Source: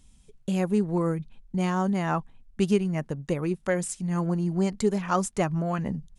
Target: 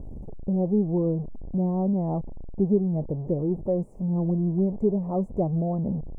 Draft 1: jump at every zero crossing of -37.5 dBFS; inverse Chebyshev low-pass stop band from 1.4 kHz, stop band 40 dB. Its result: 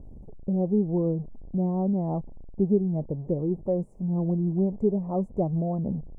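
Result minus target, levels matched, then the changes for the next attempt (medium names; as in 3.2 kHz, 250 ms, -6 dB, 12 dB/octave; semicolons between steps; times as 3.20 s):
jump at every zero crossing: distortion -6 dB
change: jump at every zero crossing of -30 dBFS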